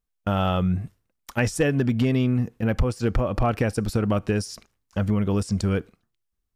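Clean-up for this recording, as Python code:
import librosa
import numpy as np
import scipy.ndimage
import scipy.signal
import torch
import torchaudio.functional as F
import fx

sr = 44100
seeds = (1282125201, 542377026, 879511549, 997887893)

y = fx.fix_declip(x, sr, threshold_db=-12.5)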